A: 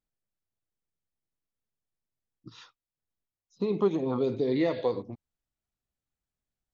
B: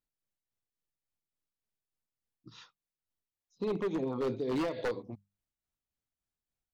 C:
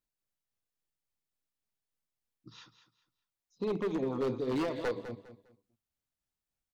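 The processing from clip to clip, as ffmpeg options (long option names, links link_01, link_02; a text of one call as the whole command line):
ffmpeg -i in.wav -af "bandreject=frequency=50:width_type=h:width=6,bandreject=frequency=100:width_type=h:width=6,bandreject=frequency=150:width_type=h:width=6,bandreject=frequency=200:width_type=h:width=6,tremolo=f=3.5:d=0.45,aeval=exprs='0.0631*(abs(mod(val(0)/0.0631+3,4)-2)-1)':channel_layout=same,volume=-2dB" out.wav
ffmpeg -i in.wav -af "aecho=1:1:202|404|606:0.251|0.0678|0.0183" out.wav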